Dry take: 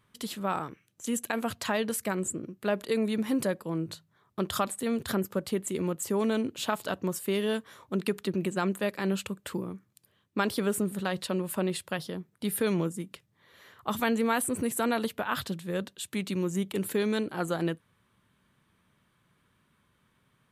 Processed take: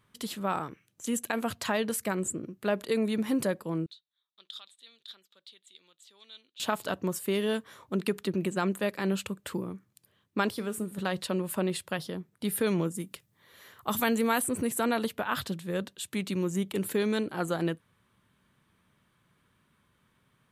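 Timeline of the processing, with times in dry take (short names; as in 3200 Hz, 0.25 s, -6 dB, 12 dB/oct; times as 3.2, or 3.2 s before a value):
3.86–6.6 band-pass 3700 Hz, Q 7.6
10.5–10.98 resonator 110 Hz, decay 0.28 s
12.95–14.4 high shelf 7200 Hz +10.5 dB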